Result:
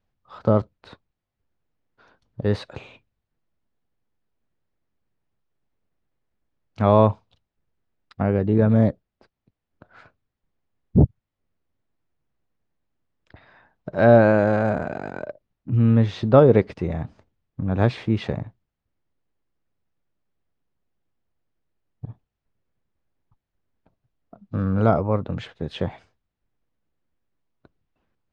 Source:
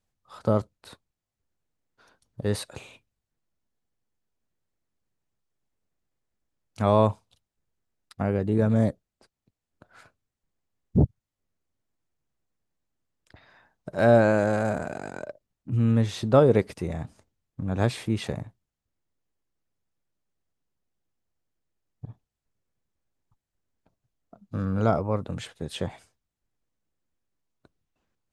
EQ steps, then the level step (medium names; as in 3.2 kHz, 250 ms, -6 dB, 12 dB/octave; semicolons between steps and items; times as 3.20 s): distance through air 210 m; +5.0 dB